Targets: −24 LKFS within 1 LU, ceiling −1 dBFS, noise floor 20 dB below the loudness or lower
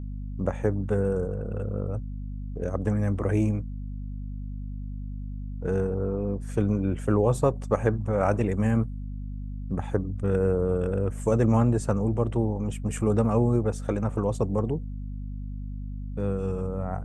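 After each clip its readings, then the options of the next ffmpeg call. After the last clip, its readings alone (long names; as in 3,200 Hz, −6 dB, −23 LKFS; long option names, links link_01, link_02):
mains hum 50 Hz; hum harmonics up to 250 Hz; level of the hum −31 dBFS; integrated loudness −27.5 LKFS; sample peak −8.5 dBFS; target loudness −24.0 LKFS
→ -af "bandreject=frequency=50:width_type=h:width=4,bandreject=frequency=100:width_type=h:width=4,bandreject=frequency=150:width_type=h:width=4,bandreject=frequency=200:width_type=h:width=4,bandreject=frequency=250:width_type=h:width=4"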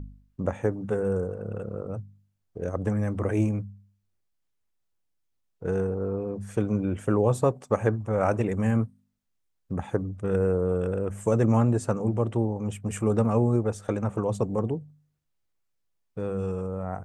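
mains hum none found; integrated loudness −27.5 LKFS; sample peak −8.5 dBFS; target loudness −24.0 LKFS
→ -af "volume=3.5dB"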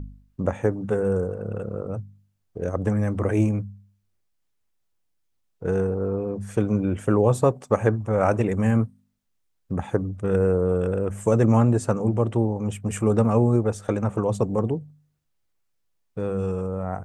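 integrated loudness −24.0 LKFS; sample peak −5.0 dBFS; background noise floor −72 dBFS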